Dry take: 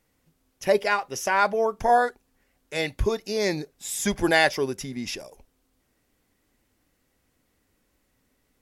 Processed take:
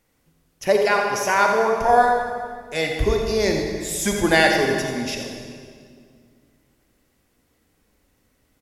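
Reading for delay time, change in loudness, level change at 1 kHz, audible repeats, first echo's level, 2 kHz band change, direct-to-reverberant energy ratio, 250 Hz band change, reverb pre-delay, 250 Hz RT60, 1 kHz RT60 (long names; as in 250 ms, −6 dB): 86 ms, +4.5 dB, +5.0 dB, 1, −9.5 dB, +4.5 dB, 2.0 dB, +5.0 dB, 33 ms, 2.7 s, 1.9 s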